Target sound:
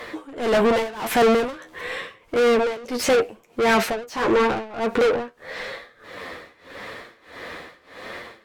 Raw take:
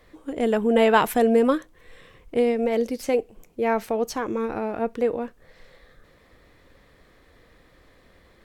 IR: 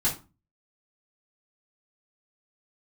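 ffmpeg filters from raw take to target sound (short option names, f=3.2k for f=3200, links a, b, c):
-filter_complex "[0:a]flanger=delay=8.5:depth=4:regen=43:speed=0.85:shape=sinusoidal,asplit=2[a][b];[b]highpass=f=720:p=1,volume=36dB,asoftclip=type=tanh:threshold=-9.5dB[c];[a][c]amix=inputs=2:normalize=0,lowpass=f=3.3k:p=1,volume=-6dB,tremolo=f=1.6:d=0.92"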